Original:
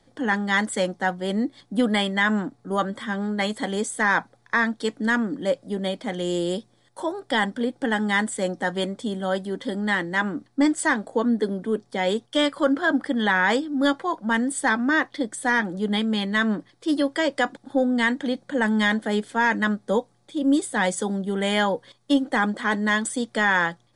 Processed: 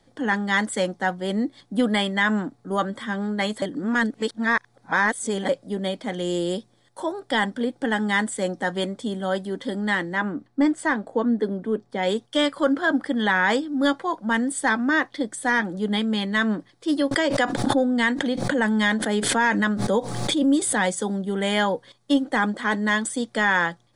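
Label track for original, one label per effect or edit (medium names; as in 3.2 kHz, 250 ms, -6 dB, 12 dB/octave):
3.620000	5.490000	reverse
10.130000	12.030000	treble shelf 3.6 kHz -11 dB
17.110000	20.820000	swell ahead of each attack at most 34 dB/s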